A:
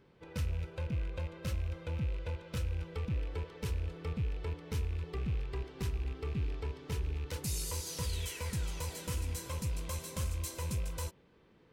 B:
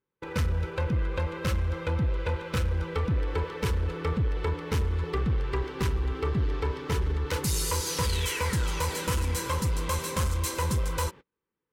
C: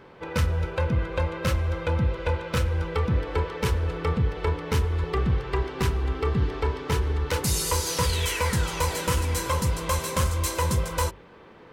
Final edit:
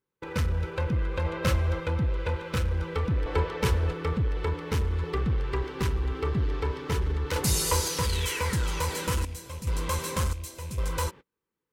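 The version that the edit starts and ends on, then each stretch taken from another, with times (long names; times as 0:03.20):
B
0:01.25–0:01.80: punch in from C
0:03.26–0:03.93: punch in from C
0:07.36–0:07.88: punch in from C
0:09.25–0:09.67: punch in from A
0:10.33–0:10.78: punch in from A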